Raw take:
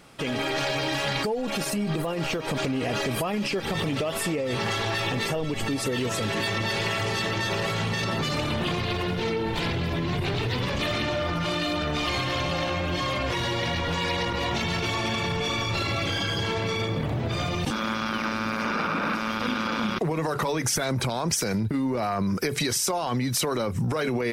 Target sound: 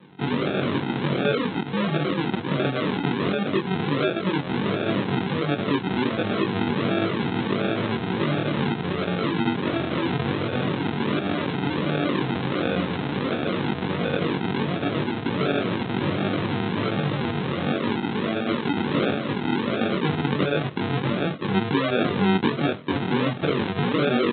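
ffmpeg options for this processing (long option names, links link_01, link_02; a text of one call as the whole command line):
ffmpeg -i in.wav -filter_complex "[0:a]aresample=8000,acrusher=samples=11:mix=1:aa=0.000001:lfo=1:lforange=6.6:lforate=1.4,aresample=44100,highpass=frequency=130:width=0.5412,highpass=frequency=130:width=1.3066,asplit=2[link_01][link_02];[link_02]adelay=21,volume=-2.5dB[link_03];[link_01][link_03]amix=inputs=2:normalize=0,volume=3dB" out.wav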